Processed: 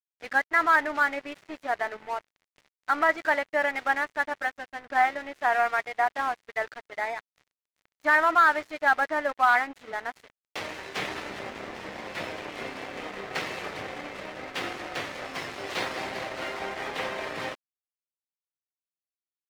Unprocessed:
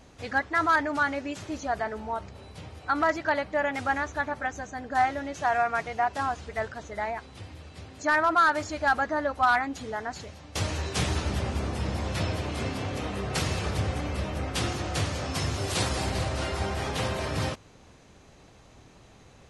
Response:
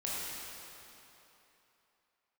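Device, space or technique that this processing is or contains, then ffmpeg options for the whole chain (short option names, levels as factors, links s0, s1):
pocket radio on a weak battery: -af "highpass=330,lowpass=3500,aeval=exprs='sgn(val(0))*max(abs(val(0))-0.00794,0)':c=same,equalizer=f=2000:t=o:w=0.51:g=5.5,volume=1.19"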